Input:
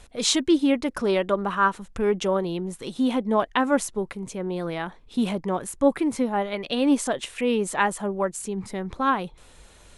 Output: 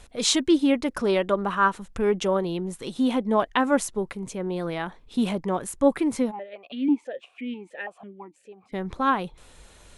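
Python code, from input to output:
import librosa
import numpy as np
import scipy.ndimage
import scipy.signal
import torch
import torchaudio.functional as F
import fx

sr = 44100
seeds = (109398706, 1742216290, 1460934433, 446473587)

y = fx.vowel_held(x, sr, hz=6.1, at=(6.3, 8.72), fade=0.02)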